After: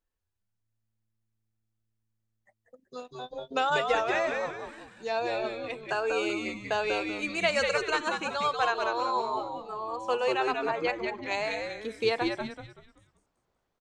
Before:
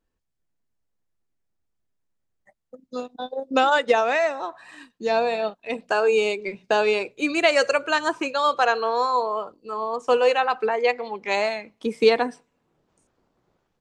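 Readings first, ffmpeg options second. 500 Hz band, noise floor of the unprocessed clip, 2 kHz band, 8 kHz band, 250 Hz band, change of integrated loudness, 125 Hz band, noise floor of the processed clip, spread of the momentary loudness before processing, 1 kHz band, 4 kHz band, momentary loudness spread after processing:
-8.5 dB, -76 dBFS, -5.5 dB, -5.0 dB, -5.5 dB, -7.0 dB, n/a, -80 dBFS, 13 LU, -6.5 dB, -5.0 dB, 13 LU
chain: -filter_complex "[0:a]equalizer=f=240:w=0.68:g=-7.5,asplit=2[a][b];[b]asplit=5[c][d][e][f][g];[c]adelay=190,afreqshift=-110,volume=-4dB[h];[d]adelay=380,afreqshift=-220,volume=-12.9dB[i];[e]adelay=570,afreqshift=-330,volume=-21.7dB[j];[f]adelay=760,afreqshift=-440,volume=-30.6dB[k];[g]adelay=950,afreqshift=-550,volume=-39.5dB[l];[h][i][j][k][l]amix=inputs=5:normalize=0[m];[a][m]amix=inputs=2:normalize=0,volume=-6.5dB"

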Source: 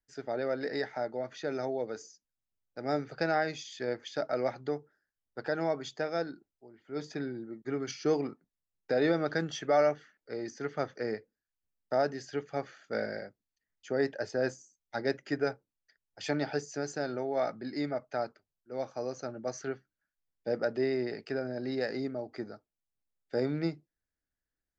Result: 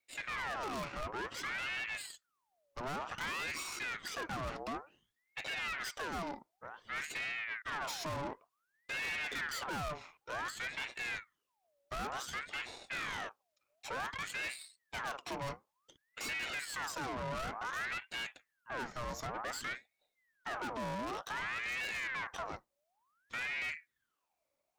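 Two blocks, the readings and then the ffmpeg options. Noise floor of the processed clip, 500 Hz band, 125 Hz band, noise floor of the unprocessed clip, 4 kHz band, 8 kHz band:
-85 dBFS, -15.5 dB, -8.0 dB, under -85 dBFS, +2.5 dB, n/a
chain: -filter_complex "[0:a]asplit=2[a][b];[b]alimiter=level_in=3.5dB:limit=-24dB:level=0:latency=1:release=155,volume=-3.5dB,volume=2dB[c];[a][c]amix=inputs=2:normalize=0,aeval=exprs='(tanh(112*val(0)+0.7)-tanh(0.7))/112':c=same,aeval=exprs='val(0)*sin(2*PI*1400*n/s+1400*0.6/0.55*sin(2*PI*0.55*n/s))':c=same,volume=5dB"

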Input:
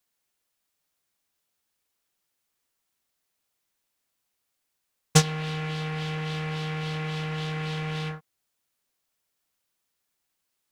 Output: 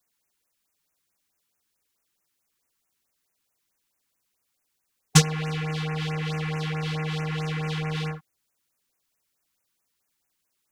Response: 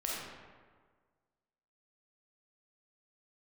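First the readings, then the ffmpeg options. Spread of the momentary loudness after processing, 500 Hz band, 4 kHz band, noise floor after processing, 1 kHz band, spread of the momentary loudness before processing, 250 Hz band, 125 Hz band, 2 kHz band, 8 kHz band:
9 LU, 0.0 dB, +1.5 dB, -78 dBFS, +0.5 dB, 9 LU, +2.5 dB, +2.5 dB, +1.5 dB, +2.5 dB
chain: -af "afftfilt=real='re*(1-between(b*sr/1024,530*pow(4200/530,0.5+0.5*sin(2*PI*4.6*pts/sr))/1.41,530*pow(4200/530,0.5+0.5*sin(2*PI*4.6*pts/sr))*1.41))':imag='im*(1-between(b*sr/1024,530*pow(4200/530,0.5+0.5*sin(2*PI*4.6*pts/sr))/1.41,530*pow(4200/530,0.5+0.5*sin(2*PI*4.6*pts/sr))*1.41))':win_size=1024:overlap=0.75,volume=2.5dB"

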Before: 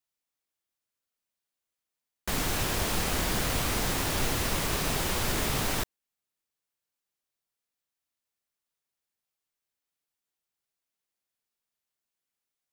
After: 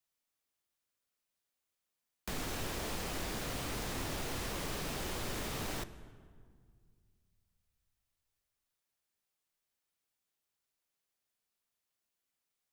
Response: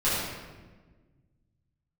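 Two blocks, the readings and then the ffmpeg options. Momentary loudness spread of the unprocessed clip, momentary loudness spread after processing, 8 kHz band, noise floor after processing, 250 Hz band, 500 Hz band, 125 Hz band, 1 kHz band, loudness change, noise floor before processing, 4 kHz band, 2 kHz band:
3 LU, 5 LU, -11.5 dB, under -85 dBFS, -8.5 dB, -8.0 dB, -10.0 dB, -9.5 dB, -10.5 dB, under -85 dBFS, -10.0 dB, -10.0 dB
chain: -filter_complex "[0:a]acrossover=split=220|540|8000[a][b][c][d];[a]acompressor=threshold=-42dB:ratio=4[e];[b]acompressor=threshold=-45dB:ratio=4[f];[c]acompressor=threshold=-43dB:ratio=4[g];[d]acompressor=threshold=-51dB:ratio=4[h];[e][f][g][h]amix=inputs=4:normalize=0,aeval=exprs='0.0237*(abs(mod(val(0)/0.0237+3,4)-2)-1)':c=same,asplit=2[i][j];[1:a]atrim=start_sample=2205,asetrate=28665,aresample=44100[k];[j][k]afir=irnorm=-1:irlink=0,volume=-29dB[l];[i][l]amix=inputs=2:normalize=0"

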